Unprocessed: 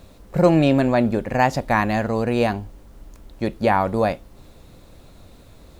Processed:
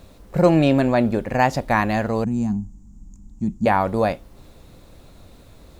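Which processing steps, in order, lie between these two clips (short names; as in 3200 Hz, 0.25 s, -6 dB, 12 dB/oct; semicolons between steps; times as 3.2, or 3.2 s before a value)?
2.24–3.66 EQ curve 130 Hz 0 dB, 200 Hz +8 dB, 540 Hz -27 dB, 840 Hz -13 dB, 1600 Hz -23 dB, 4200 Hz -22 dB, 7100 Hz +4 dB, 10000 Hz -18 dB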